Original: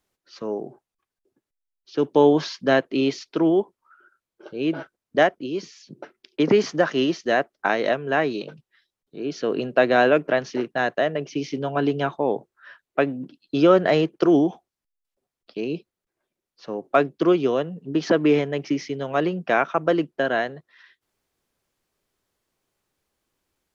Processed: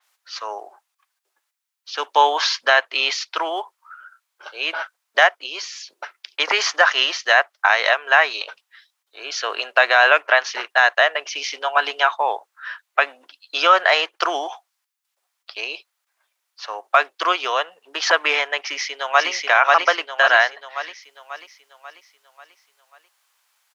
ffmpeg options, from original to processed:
-filter_complex "[0:a]asplit=2[s0][s1];[s1]afade=t=in:st=18.6:d=0.01,afade=t=out:st=19.3:d=0.01,aecho=0:1:540|1080|1620|2160|2700|3240|3780:0.944061|0.47203|0.236015|0.118008|0.0590038|0.0295019|0.014751[s2];[s0][s2]amix=inputs=2:normalize=0,highpass=f=860:w=0.5412,highpass=f=860:w=1.3066,alimiter=level_in=5.62:limit=0.891:release=50:level=0:latency=1,adynamicequalizer=threshold=0.0355:dfrequency=4900:dqfactor=0.7:tfrequency=4900:tqfactor=0.7:attack=5:release=100:ratio=0.375:range=2.5:mode=cutabove:tftype=highshelf,volume=0.841"

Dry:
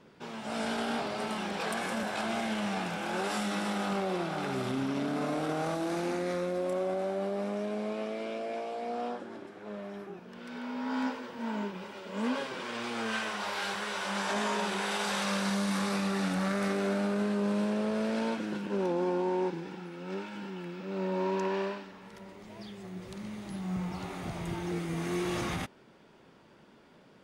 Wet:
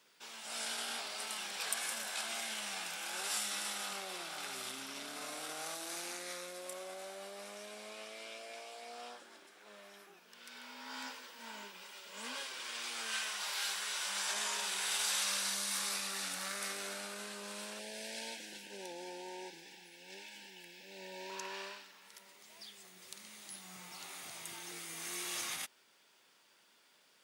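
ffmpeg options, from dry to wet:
-filter_complex "[0:a]asettb=1/sr,asplit=3[s0][s1][s2];[s0]atrim=end=17.794[s3];[s1]atrim=start=17.79:end=21.3,asetpts=PTS-STARTPTS,afade=t=in:d=0.004:c=qsin,afade=t=out:st=3.506:d=0.004:c=qsin,asuperstop=centerf=1200:order=8:qfactor=1.9[s4];[s2]atrim=start=21.296[s5];[s3][s4]acrossfade=d=0.004:c1=hsin:c2=qsin[s6];[s6][s5]acrossfade=d=0.004:c1=qsin:c2=hsin,aderivative,volume=2.11"

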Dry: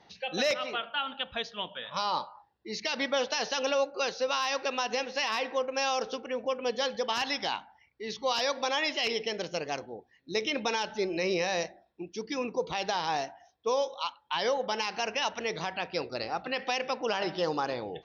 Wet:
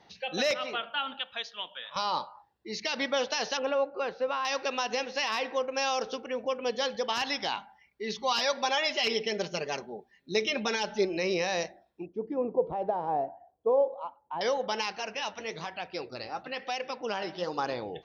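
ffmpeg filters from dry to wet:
-filter_complex "[0:a]asettb=1/sr,asplit=3[s0][s1][s2];[s0]atrim=end=1.194[s3];[s1]atrim=start=1.19:end=1.96,asetpts=PTS-STARTPTS,afade=t=in:d=0.004:c=qsin,afade=t=out:st=0.766:d=0.004:c=qsin,highpass=f=1100:p=1[s4];[s2]atrim=start=1.956[s5];[s3][s4]acrossfade=d=0.004:c1=hsin:c2=qsin[s6];[s6][s5]acrossfade=d=0.004:c1=qsin:c2=hsin,asettb=1/sr,asplit=3[s7][s8][s9];[s7]atrim=end=3.574[s10];[s8]atrim=start=3.57:end=4.45,asetpts=PTS-STARTPTS,afade=t=in:d=0.004:c=qsin,afade=t=out:st=0.876:d=0.004:c=qsin,lowpass=1900[s11];[s9]atrim=start=4.446[s12];[s10][s11]acrossfade=d=0.004:c1=hsin:c2=qsin[s13];[s13][s12]acrossfade=d=0.004:c1=qsin:c2=hsin,asettb=1/sr,asplit=3[s14][s15][s16];[s14]atrim=end=7.564[s17];[s15]atrim=start=7.56:end=11.05,asetpts=PTS-STARTPTS,afade=t=in:d=0.004:c=qsin,afade=t=out:st=3.486:d=0.004:c=qsin,aecho=1:1:5:0.65,atrim=end_sample=153909[s18];[s16]atrim=start=11.046[s19];[s17][s18]acrossfade=d=0.004:c1=hsin:c2=qsin[s20];[s20][s19]acrossfade=d=0.004:c1=qsin:c2=hsin,asettb=1/sr,asplit=3[s21][s22][s23];[s21]atrim=end=12.064[s24];[s22]atrim=start=12.06:end=14.41,asetpts=PTS-STARTPTS,afade=t=in:d=0.004:c=qsin,afade=t=out:st=2.346:d=0.004:c=qsin,lowpass=f=650:t=q:w=1.7[s25];[s23]atrim=start=14.406[s26];[s24][s25]acrossfade=d=0.004:c1=hsin:c2=qsin[s27];[s27][s26]acrossfade=d=0.004:c1=qsin:c2=hsin,asettb=1/sr,asplit=3[s28][s29][s30];[s28]atrim=end=14.924[s31];[s29]atrim=start=14.92:end=17.58,asetpts=PTS-STARTPTS,afade=t=in:d=0.004:c=qsin,afade=t=out:st=2.656:d=0.004:c=qsin,flanger=delay=1.3:depth=9.1:regen=51:speed=1.1:shape=sinusoidal[s32];[s30]atrim=start=17.576[s33];[s31][s32]acrossfade=d=0.004:c1=hsin:c2=qsin[s34];[s34][s33]acrossfade=d=0.004:c1=qsin:c2=hsin"

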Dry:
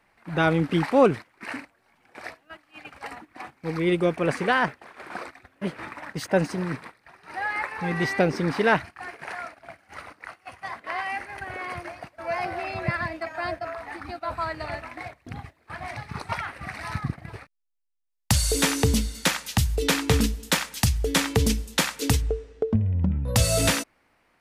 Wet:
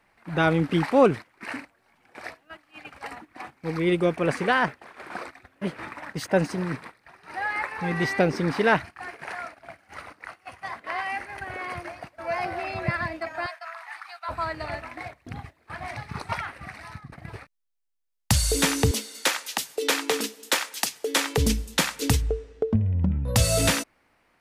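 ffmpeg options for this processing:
-filter_complex "[0:a]asettb=1/sr,asplit=3[s0][s1][s2];[s0]atrim=end=13.464[s3];[s1]atrim=start=13.46:end=14.29,asetpts=PTS-STARTPTS,afade=t=in:d=0.004:c=qsin,afade=t=out:st=0.826:d=0.004:c=qsin,highpass=f=930:w=0.5412,highpass=f=930:w=1.3066[s4];[s2]atrim=start=14.286[s5];[s3][s4]acrossfade=d=0.004:c1=hsin:c2=qsin[s6];[s6][s5]acrossfade=d=0.004:c1=qsin:c2=hsin,asettb=1/sr,asplit=3[s7][s8][s9];[s7]atrim=end=18.914[s10];[s8]atrim=start=18.91:end=21.38,asetpts=PTS-STARTPTS,afade=t=in:d=0.004:c=qsin,afade=t=out:st=2.466:d=0.004:c=qsin,highpass=f=320:w=0.5412,highpass=f=320:w=1.3066[s11];[s9]atrim=start=21.376[s12];[s10][s11]acrossfade=d=0.004:c1=hsin:c2=qsin[s13];[s13][s12]acrossfade=d=0.004:c1=qsin:c2=hsin,asplit=2[s14][s15];[s14]atrim=end=17.12,asetpts=PTS-STARTPTS,afade=t=out:st=16.36:d=0.76:silence=0.11885[s16];[s15]atrim=start=17.12,asetpts=PTS-STARTPTS,afade=t=in:d=0.004:c=hsin:silence=0.11885[s17];[s16][s17]concat=n=2:v=0:a=1"

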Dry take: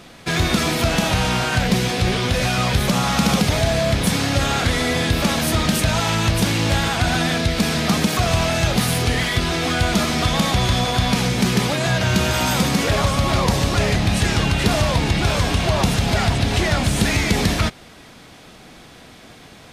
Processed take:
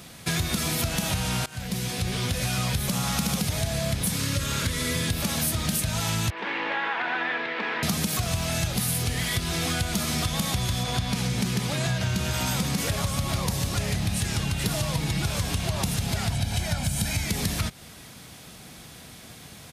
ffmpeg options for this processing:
-filter_complex "[0:a]asettb=1/sr,asplit=3[s0][s1][s2];[s0]atrim=end=4.174[s3];[s1]atrim=start=4.17:end=5.09,asetpts=PTS-STARTPTS,afade=t=in:d=0.004:c=qsin,afade=t=out:st=0.916:d=0.004:c=qsin,asuperstop=centerf=750:order=12:qfactor=4[s4];[s2]atrim=start=5.086[s5];[s3][s4]acrossfade=d=0.004:c1=hsin:c2=qsin[s6];[s6][s5]acrossfade=d=0.004:c1=qsin:c2=hsin,asettb=1/sr,asplit=3[s7][s8][s9];[s7]atrim=end=6.304[s10];[s8]atrim=start=6.3:end=7.83,asetpts=PTS-STARTPTS,afade=t=in:d=0.004:c=qsin,afade=t=out:st=1.526:d=0.004:c=qsin,highpass=f=350:w=0.5412,highpass=f=350:w=1.3066,equalizer=f=660:t=q:w=4:g=-6,equalizer=f=940:t=q:w=4:g=7,equalizer=f=1800:t=q:w=4:g=6,lowpass=f=2600:w=0.5412,lowpass=f=2600:w=1.3066[s11];[s9]atrim=start=7.826[s12];[s10][s11]acrossfade=d=0.004:c1=hsin:c2=qsin[s13];[s13][s12]acrossfade=d=0.004:c1=qsin:c2=hsin,asettb=1/sr,asplit=3[s14][s15][s16];[s14]atrim=end=10.834[s17];[s15]atrim=start=10.83:end=12.78,asetpts=PTS-STARTPTS,afade=t=in:d=0.004:c=qsin,afade=t=out:st=1.946:d=0.004:c=qsin,highshelf=f=10000:g=-11.5[s18];[s16]atrim=start=12.776[s19];[s17][s18]acrossfade=d=0.004:c1=hsin:c2=qsin[s20];[s20][s19]acrossfade=d=0.004:c1=qsin:c2=hsin,asettb=1/sr,asplit=3[s21][s22][s23];[s21]atrim=end=14.664[s24];[s22]atrim=start=14.66:end=15.26,asetpts=PTS-STARTPTS,afade=t=in:d=0.004:c=qsin,afade=t=out:st=0.596:d=0.004:c=qsin,aecho=1:1:6.3:0.48,atrim=end_sample=26460[s25];[s23]atrim=start=15.256[s26];[s24][s25]acrossfade=d=0.004:c1=hsin:c2=qsin[s27];[s27][s26]acrossfade=d=0.004:c1=qsin:c2=hsin,asettb=1/sr,asplit=3[s28][s29][s30];[s28]atrim=end=16.324[s31];[s29]atrim=start=16.32:end=17.26,asetpts=PTS-STARTPTS,afade=t=in:d=0.004:c=qsin,afade=t=out:st=0.936:d=0.004:c=qsin,aecho=1:1:1.3:0.53,atrim=end_sample=41454[s32];[s30]atrim=start=17.256[s33];[s31][s32]acrossfade=d=0.004:c1=hsin:c2=qsin[s34];[s34][s33]acrossfade=d=0.004:c1=qsin:c2=hsin,asplit=2[s35][s36];[s35]atrim=end=1.46,asetpts=PTS-STARTPTS,afade=t=out:st=1.456:d=0.004:c=hsin:silence=0.0749894[s37];[s36]atrim=start=1.46,asetpts=PTS-STARTPTS,afade=t=in:d=1.69:c=qsin:silence=0.0749894[s38];[s37][s38]concat=n=2:v=0:a=1,firequalizer=gain_entry='entry(150,0);entry(290,-7);entry(11000,8)':delay=0.05:min_phase=1,acompressor=threshold=0.0631:ratio=6,highpass=51,volume=1.12"

